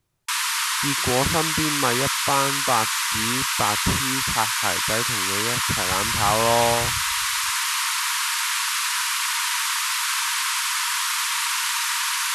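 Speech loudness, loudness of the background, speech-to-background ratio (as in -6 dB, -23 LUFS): -26.0 LUFS, -21.5 LUFS, -4.5 dB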